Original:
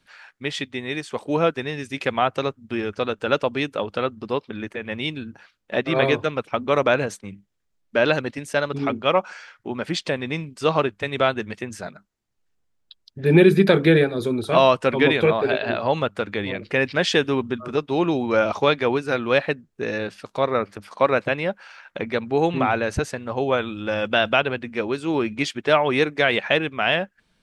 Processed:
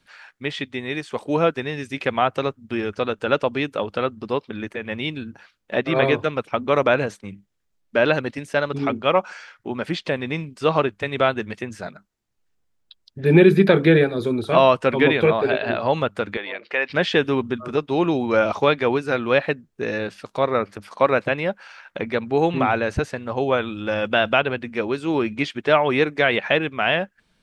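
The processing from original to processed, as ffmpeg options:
-filter_complex "[0:a]asettb=1/sr,asplit=3[s0][s1][s2];[s0]atrim=end=16.374[s3];[s1]atrim=start=16.37:end=16.9,asetpts=PTS-STARTPTS,afade=t=in:d=0.004:c=qsin,afade=t=out:st=0.526:d=0.004:c=qsin,highpass=600,lowpass=4200[s4];[s2]atrim=start=16.896[s5];[s3][s4]acrossfade=d=0.004:c1=hsin:c2=qsin[s6];[s6][s5]acrossfade=d=0.004:c1=qsin:c2=hsin,acrossover=split=3900[s7][s8];[s8]acompressor=threshold=0.00562:ratio=4:attack=1:release=60[s9];[s7][s9]amix=inputs=2:normalize=0,volume=1.12"

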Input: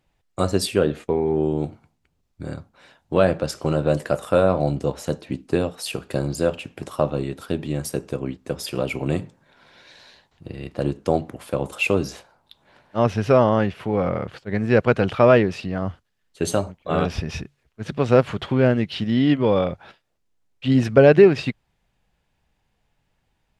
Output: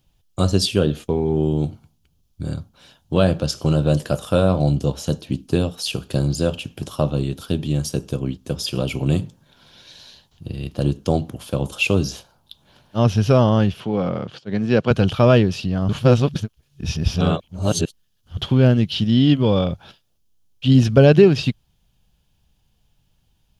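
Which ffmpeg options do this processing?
-filter_complex "[0:a]asettb=1/sr,asplit=3[s0][s1][s2];[s0]atrim=end=13.804[s3];[s1]atrim=start=13.8:end=14.91,asetpts=PTS-STARTPTS,afade=t=in:d=0.004:c=qsin,afade=t=out:st=1.106:d=0.004:c=qsin,highpass=170,lowpass=6000[s4];[s2]atrim=start=14.906[s5];[s3][s4]acrossfade=d=0.004:c1=hsin:c2=qsin[s6];[s6][s5]acrossfade=d=0.004:c1=qsin:c2=hsin,asplit=3[s7][s8][s9];[s7]atrim=end=15.892[s10];[s8]atrim=start=15.888:end=18.372,asetpts=PTS-STARTPTS,areverse[s11];[s9]atrim=start=18.368[s12];[s10][s11]acrossfade=d=0.004:c1=hsin:c2=hsin[s13];[s13][s12]acrossfade=d=0.004:c1=hsin:c2=hsin,equalizer=f=2000:t=o:w=0.33:g=-7,equalizer=f=3150:t=o:w=0.33:g=7,equalizer=f=8000:t=o:w=0.33:g=-8,acrossover=split=8000[s14][s15];[s15]acompressor=threshold=0.00141:ratio=4:attack=1:release=60[s16];[s14][s16]amix=inputs=2:normalize=0,bass=f=250:g=10,treble=f=4000:g=14,volume=0.794"

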